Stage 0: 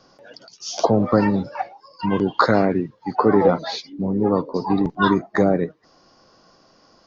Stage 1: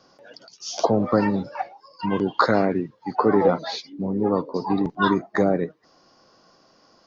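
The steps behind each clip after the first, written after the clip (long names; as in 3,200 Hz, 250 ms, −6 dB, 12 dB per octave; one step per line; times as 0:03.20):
low-shelf EQ 90 Hz −8 dB
level −2 dB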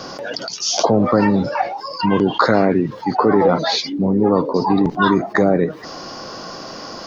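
in parallel at −1 dB: brickwall limiter −12 dBFS, peak gain reduction 7.5 dB
on the sum: envelope flattener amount 50%
level −1.5 dB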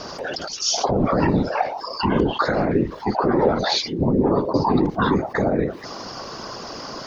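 brickwall limiter −8.5 dBFS, peak gain reduction 7 dB
random phases in short frames
level −1.5 dB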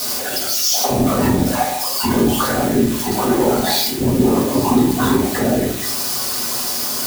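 spike at every zero crossing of −13 dBFS
convolution reverb RT60 0.65 s, pre-delay 4 ms, DRR −3.5 dB
level −4 dB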